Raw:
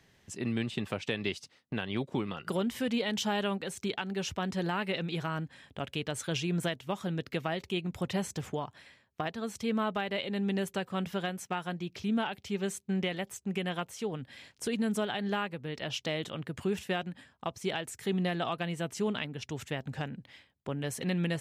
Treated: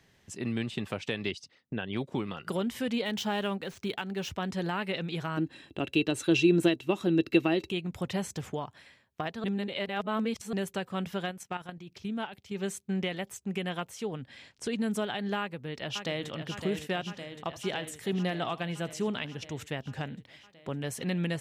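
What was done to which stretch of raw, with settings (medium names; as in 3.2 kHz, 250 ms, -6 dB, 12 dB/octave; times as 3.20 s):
1.31–1.93 s: resonances exaggerated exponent 1.5
3.05–4.30 s: median filter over 5 samples
5.37–7.72 s: small resonant body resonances 330/2700/3900 Hz, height 17 dB
9.44–10.53 s: reverse
11.31–12.57 s: level held to a coarse grid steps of 11 dB
14.16–14.81 s: low-pass 8.3 kHz
15.39–16.29 s: echo throw 560 ms, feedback 75%, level -7 dB
17.01–19.45 s: delay 77 ms -18.5 dB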